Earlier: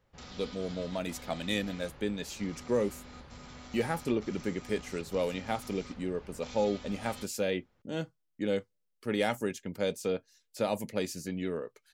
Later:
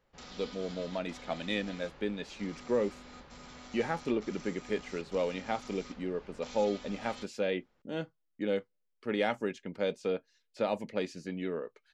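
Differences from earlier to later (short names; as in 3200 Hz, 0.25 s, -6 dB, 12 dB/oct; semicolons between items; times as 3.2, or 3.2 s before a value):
speech: add LPF 3600 Hz 12 dB/oct; master: add bell 90 Hz -10.5 dB 1.3 oct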